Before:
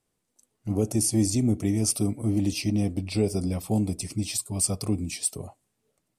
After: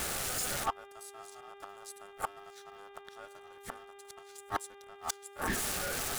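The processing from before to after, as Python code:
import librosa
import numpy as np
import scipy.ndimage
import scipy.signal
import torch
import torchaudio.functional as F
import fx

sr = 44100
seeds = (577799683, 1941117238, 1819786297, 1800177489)

p1 = x + 0.5 * 10.0 ** (-35.0 / 20.0) * np.sign(x)
p2 = fx.low_shelf(p1, sr, hz=220.0, db=-11.5)
p3 = fx.gate_flip(p2, sr, shuts_db=-26.0, range_db=-32)
p4 = scipy.signal.sosfilt(scipy.signal.butter(4, 48.0, 'highpass', fs=sr, output='sos'), p3)
p5 = p4 * np.sin(2.0 * np.pi * 1000.0 * np.arange(len(p4)) / sr)
p6 = fx.low_shelf(p5, sr, hz=110.0, db=9.0)
p7 = fx.leveller(p6, sr, passes=2)
p8 = fx.rider(p7, sr, range_db=3, speed_s=2.0)
p9 = p7 + (p8 * 10.0 ** (2.0 / 20.0))
p10 = fx.dmg_buzz(p9, sr, base_hz=400.0, harmonics=9, level_db=-50.0, tilt_db=-6, odd_only=False)
y = p10 * 10.0 ** (-3.5 / 20.0)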